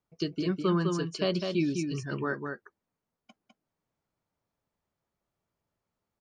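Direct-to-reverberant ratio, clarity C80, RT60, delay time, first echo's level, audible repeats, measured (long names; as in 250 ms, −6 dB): no reverb audible, no reverb audible, no reverb audible, 204 ms, −5.0 dB, 1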